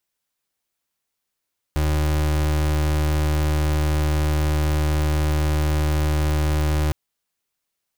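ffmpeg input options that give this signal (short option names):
-f lavfi -i "aevalsrc='0.1*(2*lt(mod(76.1*t,1),0.34)-1)':d=5.16:s=44100"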